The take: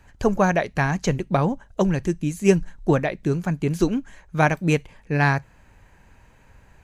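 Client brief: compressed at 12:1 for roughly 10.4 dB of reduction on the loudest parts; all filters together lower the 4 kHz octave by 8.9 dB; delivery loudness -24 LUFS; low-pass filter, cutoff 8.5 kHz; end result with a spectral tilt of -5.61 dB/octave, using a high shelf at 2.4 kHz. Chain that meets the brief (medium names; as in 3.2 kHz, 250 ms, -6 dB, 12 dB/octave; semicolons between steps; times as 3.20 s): low-pass 8.5 kHz; treble shelf 2.4 kHz -6.5 dB; peaking EQ 4 kHz -6 dB; compression 12:1, threshold -21 dBFS; trim +4.5 dB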